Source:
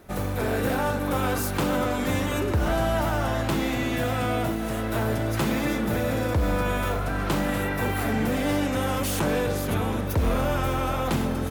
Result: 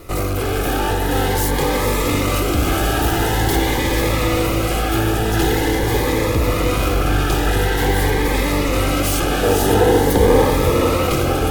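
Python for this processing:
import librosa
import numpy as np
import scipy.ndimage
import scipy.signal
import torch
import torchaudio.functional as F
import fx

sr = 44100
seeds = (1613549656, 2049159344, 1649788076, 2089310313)

p1 = fx.lower_of_two(x, sr, delay_ms=2.4)
p2 = fx.high_shelf(p1, sr, hz=8100.0, db=8.5, at=(2.34, 3.56))
p3 = fx.rider(p2, sr, range_db=10, speed_s=0.5)
p4 = p2 + (p3 * librosa.db_to_amplitude(3.0))
p5 = 10.0 ** (-19.0 / 20.0) * np.tanh(p4 / 10.0 ** (-19.0 / 20.0))
p6 = fx.graphic_eq(p5, sr, hz=(250, 500, 1000), db=(4, 8, 4), at=(9.43, 10.5))
p7 = p6 + fx.echo_diffused(p6, sr, ms=494, feedback_pct=65, wet_db=-4.0, dry=0)
p8 = fx.notch_cascade(p7, sr, direction='rising', hz=0.46)
y = p8 * librosa.db_to_amplitude(4.5)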